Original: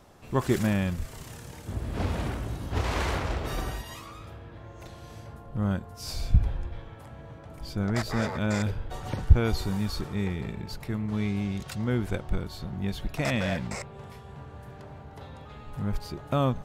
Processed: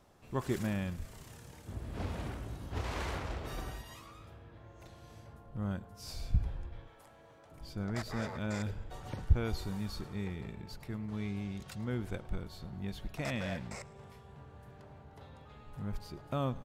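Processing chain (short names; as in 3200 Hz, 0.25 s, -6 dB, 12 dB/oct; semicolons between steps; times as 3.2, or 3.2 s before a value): 6.87–7.52 tone controls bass -13 dB, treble +6 dB; feedback echo 0.107 s, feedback 54%, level -22 dB; gain -9 dB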